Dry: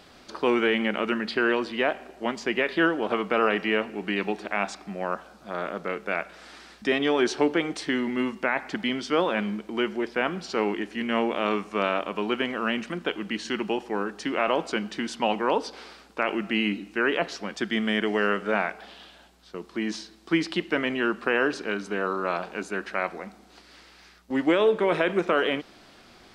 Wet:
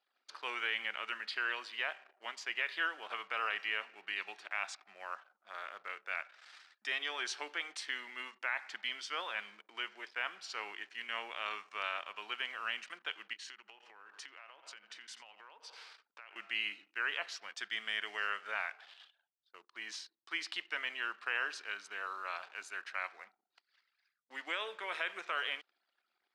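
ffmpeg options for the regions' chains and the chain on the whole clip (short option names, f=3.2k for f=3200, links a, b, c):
-filter_complex "[0:a]asettb=1/sr,asplit=3[a][b][c];[a]atrim=end=13.334[d];[b]atrim=start=13.33:end=16.36,asetpts=PTS-STARTPTS,afade=t=in:d=0.004:c=qsin,afade=t=out:st=3.026:d=0.004:c=qsin,aecho=1:1:86|172|258|344|430:0.15|0.0808|0.0436|0.0236|0.0127,atrim=end_sample=133623,acompressor=threshold=-35dB:ratio=16:attack=3.2:release=140:knee=1:detection=peak[e];[c]atrim=start=16.356[f];[d][e]acrossfade=d=0.004:c1=hsin:c2=qsin[g];[g][f]acrossfade=d=0.004:c1=qsin:c2=hsin,anlmdn=0.0251,highpass=1.4k,volume=-6.5dB"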